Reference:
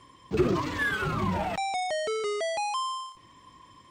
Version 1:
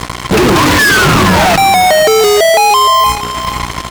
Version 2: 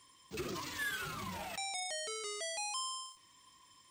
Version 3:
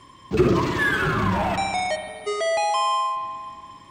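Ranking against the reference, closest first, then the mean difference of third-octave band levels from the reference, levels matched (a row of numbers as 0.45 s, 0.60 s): 3, 2, 1; 5.0 dB, 6.5 dB, 11.5 dB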